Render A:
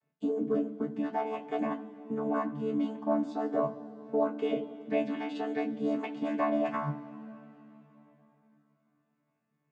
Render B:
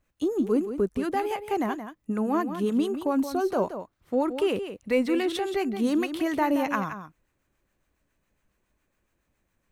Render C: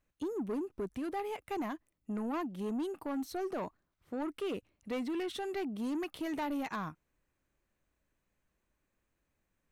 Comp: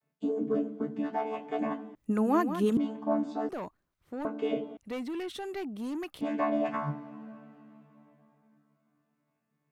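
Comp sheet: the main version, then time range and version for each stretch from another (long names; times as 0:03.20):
A
0:01.95–0:02.77: punch in from B
0:03.49–0:04.25: punch in from C
0:04.77–0:06.21: punch in from C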